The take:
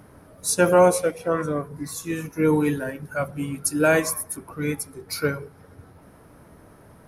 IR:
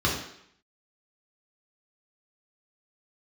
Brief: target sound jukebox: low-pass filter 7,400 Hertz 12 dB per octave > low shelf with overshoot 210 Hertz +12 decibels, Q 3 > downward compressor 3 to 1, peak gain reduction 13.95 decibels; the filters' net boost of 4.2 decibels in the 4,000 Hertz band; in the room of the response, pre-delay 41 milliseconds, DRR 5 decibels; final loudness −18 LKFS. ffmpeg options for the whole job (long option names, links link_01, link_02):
-filter_complex "[0:a]equalizer=frequency=4000:width_type=o:gain=6,asplit=2[link_01][link_02];[1:a]atrim=start_sample=2205,adelay=41[link_03];[link_02][link_03]afir=irnorm=-1:irlink=0,volume=-18.5dB[link_04];[link_01][link_04]amix=inputs=2:normalize=0,lowpass=7400,lowshelf=frequency=210:width_type=q:width=3:gain=12,acompressor=threshold=-23dB:ratio=3,volume=6.5dB"